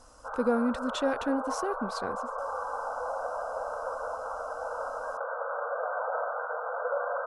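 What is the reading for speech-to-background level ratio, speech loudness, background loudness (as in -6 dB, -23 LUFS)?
3.0 dB, -31.5 LUFS, -34.5 LUFS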